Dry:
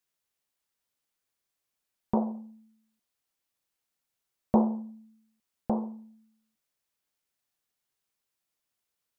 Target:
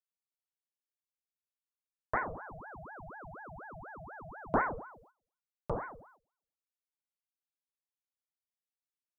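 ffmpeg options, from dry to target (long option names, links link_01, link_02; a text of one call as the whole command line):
ffmpeg -i in.wav -filter_complex "[0:a]asettb=1/sr,asplit=3[link_01][link_02][link_03];[link_01]atrim=end=2.254[link_04];[link_02]atrim=start=2.25:end=4.57,asetpts=PTS-STARTPTS,afade=type=in:duration=0.004:curve=qsin,afade=type=out:start_time=2.316:duration=0.004:curve=qsin,aeval=exprs='val(0)+0.0126*sin(2*PI*400*n/s)':channel_layout=same[link_05];[link_03]atrim=start=4.566[link_06];[link_04][link_05]acrossfade=duration=0.004:curve1=hsin:curve2=qsin[link_07];[link_07][link_06]acrossfade=duration=0.004:curve1=qsin:curve2=hsin,agate=range=-15dB:threshold=-56dB:ratio=16:detection=peak,aeval=exprs='val(0)*sin(2*PI*760*n/s+760*0.7/4.1*sin(2*PI*4.1*n/s))':channel_layout=same,volume=-3.5dB" out.wav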